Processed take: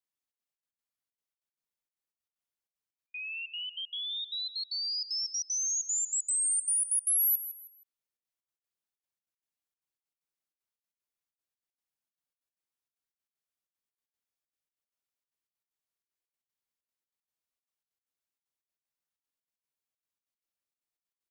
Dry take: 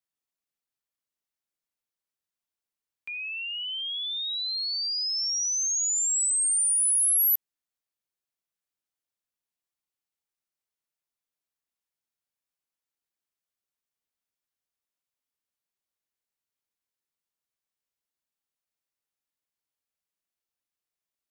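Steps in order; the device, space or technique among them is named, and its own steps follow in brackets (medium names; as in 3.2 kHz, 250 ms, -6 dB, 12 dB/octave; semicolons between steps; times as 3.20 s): trance gate with a delay (trance gate "xxxx.xx.x." 191 bpm -60 dB; feedback delay 159 ms, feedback 31%, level -13 dB); trim -4 dB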